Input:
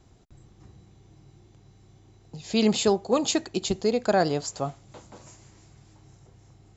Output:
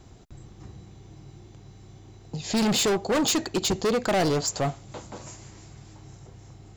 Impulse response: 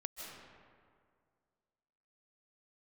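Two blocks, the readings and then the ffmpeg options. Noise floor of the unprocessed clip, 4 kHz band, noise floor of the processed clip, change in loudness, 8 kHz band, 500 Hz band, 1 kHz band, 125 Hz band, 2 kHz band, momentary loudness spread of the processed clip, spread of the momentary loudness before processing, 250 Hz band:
−57 dBFS, +3.0 dB, −50 dBFS, +0.5 dB, can't be measured, −1.0 dB, +0.5 dB, +3.5 dB, +3.0 dB, 19 LU, 11 LU, 0.0 dB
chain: -af "asoftclip=type=hard:threshold=-27.5dB,volume=7dB"

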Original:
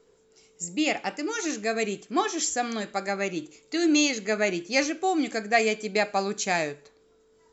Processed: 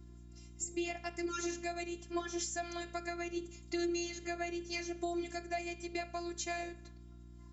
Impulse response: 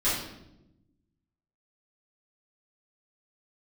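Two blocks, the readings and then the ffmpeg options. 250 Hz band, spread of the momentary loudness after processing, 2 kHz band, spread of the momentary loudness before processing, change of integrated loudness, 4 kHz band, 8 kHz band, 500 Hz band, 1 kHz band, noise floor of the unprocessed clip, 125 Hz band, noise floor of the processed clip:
−11.5 dB, 15 LU, −14.5 dB, 8 LU, −12.5 dB, −13.5 dB, can't be measured, −12.5 dB, −14.0 dB, −62 dBFS, −7.5 dB, −54 dBFS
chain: -af "acompressor=threshold=-32dB:ratio=10,afftfilt=real='hypot(re,im)*cos(PI*b)':imag='0':win_size=512:overlap=0.75,aeval=exprs='val(0)+0.00251*(sin(2*PI*60*n/s)+sin(2*PI*2*60*n/s)/2+sin(2*PI*3*60*n/s)/3+sin(2*PI*4*60*n/s)/4+sin(2*PI*5*60*n/s)/5)':channel_layout=same"

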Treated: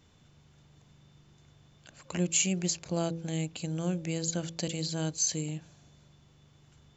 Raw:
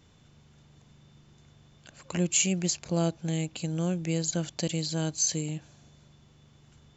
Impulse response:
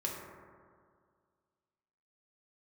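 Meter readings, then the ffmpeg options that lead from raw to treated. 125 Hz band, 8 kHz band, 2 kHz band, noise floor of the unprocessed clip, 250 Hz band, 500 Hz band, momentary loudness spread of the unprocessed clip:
−3.0 dB, can't be measured, −2.0 dB, −59 dBFS, −3.0 dB, −2.5 dB, 8 LU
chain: -af "bandreject=frequency=55.25:width_type=h:width=4,bandreject=frequency=110.5:width_type=h:width=4,bandreject=frequency=165.75:width_type=h:width=4,bandreject=frequency=221:width_type=h:width=4,bandreject=frequency=276.25:width_type=h:width=4,bandreject=frequency=331.5:width_type=h:width=4,bandreject=frequency=386.75:width_type=h:width=4,bandreject=frequency=442:width_type=h:width=4,bandreject=frequency=497.25:width_type=h:width=4,bandreject=frequency=552.5:width_type=h:width=4,volume=-2dB"

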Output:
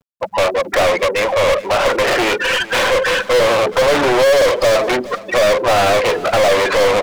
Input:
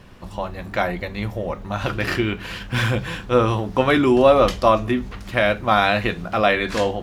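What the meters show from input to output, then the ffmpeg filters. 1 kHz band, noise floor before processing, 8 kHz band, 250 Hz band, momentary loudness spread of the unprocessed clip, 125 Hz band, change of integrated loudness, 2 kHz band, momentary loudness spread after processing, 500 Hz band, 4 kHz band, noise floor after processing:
+4.5 dB, −37 dBFS, +16.0 dB, −2.5 dB, 12 LU, −5.5 dB, +5.5 dB, +7.0 dB, 4 LU, +7.5 dB, +9.0 dB, −34 dBFS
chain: -filter_complex "[0:a]afftfilt=real='re*gte(hypot(re,im),0.0398)':imag='im*gte(hypot(re,im),0.0398)':win_size=1024:overlap=0.75,adynamicequalizer=threshold=0.00126:dfrequency=8200:dqfactor=2.4:tfrequency=8200:tqfactor=2.4:attack=5:release=100:ratio=0.375:range=3:mode=boostabove:tftype=bell,highpass=frequency=540:width_type=q:width=4.9,acrossover=split=890[link_01][link_02];[link_02]acompressor=threshold=-29dB:ratio=6[link_03];[link_01][link_03]amix=inputs=2:normalize=0,asoftclip=type=tanh:threshold=-8.5dB,aeval=exprs='0.376*(cos(1*acos(clip(val(0)/0.376,-1,1)))-cos(1*PI/2))+0.0944*(cos(6*acos(clip(val(0)/0.376,-1,1)))-cos(6*PI/2))':channel_layout=same,acontrast=62,asplit=2[link_04][link_05];[link_05]highpass=frequency=720:poles=1,volume=32dB,asoftclip=type=tanh:threshold=-1dB[link_06];[link_04][link_06]amix=inputs=2:normalize=0,lowpass=frequency=7200:poles=1,volume=-6dB,acrusher=bits=8:mix=0:aa=0.000001,asplit=2[link_07][link_08];[link_08]aecho=0:1:420|840:0.126|0.0302[link_09];[link_07][link_09]amix=inputs=2:normalize=0,volume=-7dB"

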